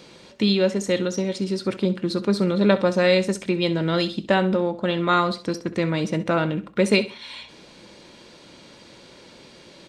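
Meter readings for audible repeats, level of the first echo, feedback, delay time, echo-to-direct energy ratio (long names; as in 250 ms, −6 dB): 2, −15.5 dB, 32%, 65 ms, −15.0 dB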